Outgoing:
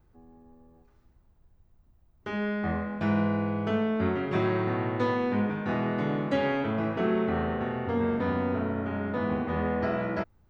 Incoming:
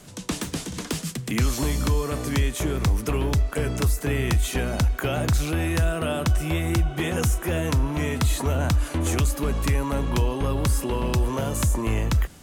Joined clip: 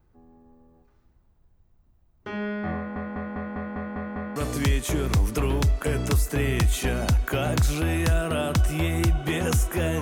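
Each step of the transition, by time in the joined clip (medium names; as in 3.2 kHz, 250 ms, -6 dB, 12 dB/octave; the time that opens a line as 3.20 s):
outgoing
2.76 s: stutter in place 0.20 s, 8 plays
4.36 s: go over to incoming from 2.07 s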